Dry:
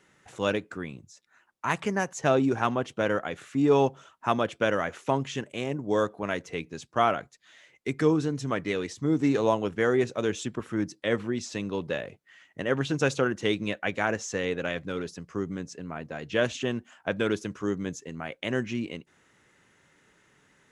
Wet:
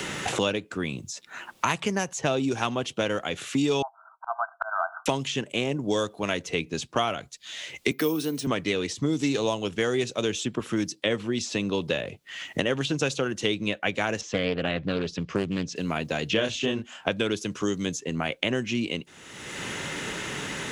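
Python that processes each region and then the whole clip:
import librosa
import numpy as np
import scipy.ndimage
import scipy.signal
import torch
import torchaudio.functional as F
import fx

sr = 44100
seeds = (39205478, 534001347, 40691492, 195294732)

y = fx.chain(x, sr, fx.brickwall_bandpass(low_hz=630.0, high_hz=1600.0),
    fx.auto_swell(attack_ms=332.0), at=(3.82, 5.06))
y = fx.chain(y, sr, fx.highpass(hz=190.0, slope=24),
    fx.resample_bad(factor=3, down='filtered', up='hold'), at=(7.91, 8.47))
y = fx.chain(y, sr, fx.lowpass(hz=2800.0, slope=12),
    fx.low_shelf(hz=160.0, db=9.5),
    fx.doppler_dist(depth_ms=0.42), at=(14.21, 15.76))
y = fx.chain(y, sr, fx.high_shelf(hz=8600.0, db=-8.0),
    fx.doubler(ms=28.0, db=-3.0), at=(16.33, 17.09))
y = fx.high_shelf_res(y, sr, hz=2300.0, db=6.5, q=1.5)
y = fx.band_squash(y, sr, depth_pct=100)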